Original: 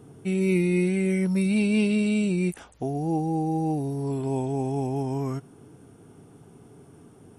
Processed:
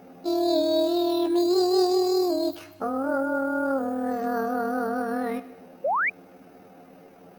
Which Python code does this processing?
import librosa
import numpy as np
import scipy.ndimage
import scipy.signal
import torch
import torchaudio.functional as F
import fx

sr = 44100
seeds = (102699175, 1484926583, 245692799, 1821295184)

y = fx.pitch_heads(x, sr, semitones=10.0)
y = fx.rev_schroeder(y, sr, rt60_s=1.1, comb_ms=31, drr_db=13.5)
y = fx.spec_paint(y, sr, seeds[0], shape='rise', start_s=5.84, length_s=0.26, low_hz=500.0, high_hz=2500.0, level_db=-25.0)
y = y * 10.0 ** (1.5 / 20.0)